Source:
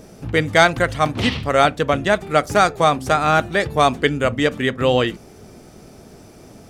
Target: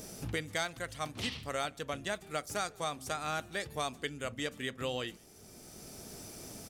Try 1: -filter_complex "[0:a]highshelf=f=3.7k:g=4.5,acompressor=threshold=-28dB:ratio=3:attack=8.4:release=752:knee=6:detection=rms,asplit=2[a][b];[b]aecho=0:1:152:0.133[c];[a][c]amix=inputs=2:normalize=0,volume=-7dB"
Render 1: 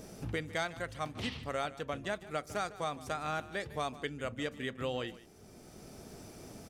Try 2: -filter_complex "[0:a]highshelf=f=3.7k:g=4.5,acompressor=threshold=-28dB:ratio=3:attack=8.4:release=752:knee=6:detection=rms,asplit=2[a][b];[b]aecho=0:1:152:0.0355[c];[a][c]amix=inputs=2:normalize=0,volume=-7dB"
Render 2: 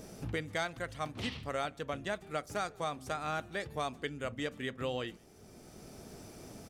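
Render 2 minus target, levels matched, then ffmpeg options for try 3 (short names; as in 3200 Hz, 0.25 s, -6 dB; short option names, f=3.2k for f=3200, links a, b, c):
8000 Hz band -7.5 dB
-filter_complex "[0:a]highshelf=f=3.7k:g=15.5,acompressor=threshold=-28dB:ratio=3:attack=8.4:release=752:knee=6:detection=rms,asplit=2[a][b];[b]aecho=0:1:152:0.0355[c];[a][c]amix=inputs=2:normalize=0,volume=-7dB"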